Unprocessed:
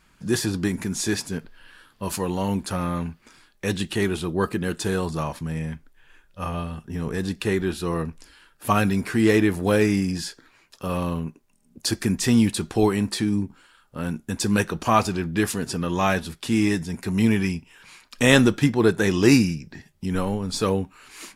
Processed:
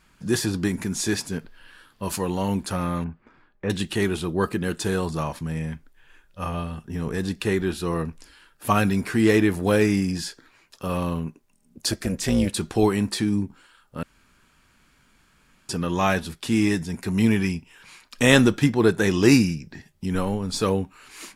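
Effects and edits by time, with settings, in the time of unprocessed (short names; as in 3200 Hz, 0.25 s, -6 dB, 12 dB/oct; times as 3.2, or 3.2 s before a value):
3.04–3.7 LPF 1500 Hz
11.92–12.54 AM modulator 290 Hz, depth 60%
14.03–15.69 room tone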